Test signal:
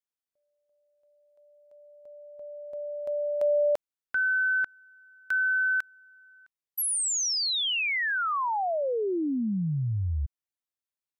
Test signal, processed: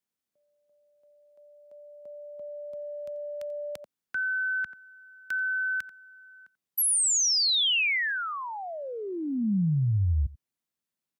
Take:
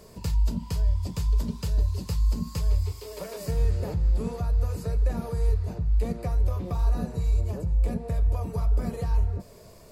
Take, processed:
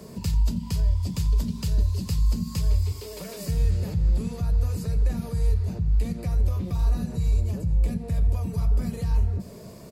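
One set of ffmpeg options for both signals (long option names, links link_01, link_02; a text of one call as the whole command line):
ffmpeg -i in.wav -filter_complex "[0:a]aecho=1:1:88:0.0891,acrossover=split=110|1900[link_01][link_02][link_03];[link_02]acompressor=threshold=-41dB:ratio=6:attack=0.15:release=79:knee=6:detection=rms[link_04];[link_01][link_04][link_03]amix=inputs=3:normalize=0,highpass=frequency=46:poles=1,equalizer=frequency=200:width=1:gain=10.5,volume=3.5dB" out.wav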